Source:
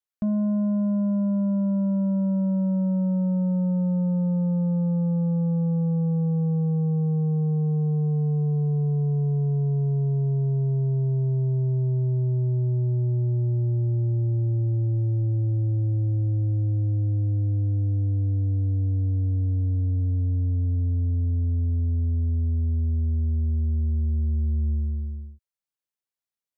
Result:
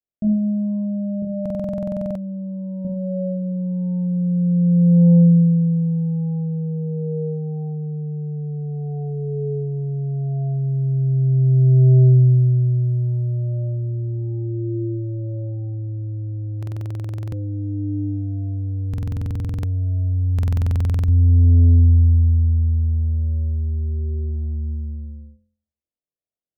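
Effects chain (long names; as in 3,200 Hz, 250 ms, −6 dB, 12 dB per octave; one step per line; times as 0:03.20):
elliptic low-pass filter 680 Hz, stop band 50 dB
0:01.22–0:02.85: phaser with its sweep stopped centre 430 Hz, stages 6
flutter between parallel walls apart 4 metres, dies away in 0.52 s
buffer that repeats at 0:01.41/0:16.58/0:18.89/0:20.34, samples 2,048, times 15
level +1.5 dB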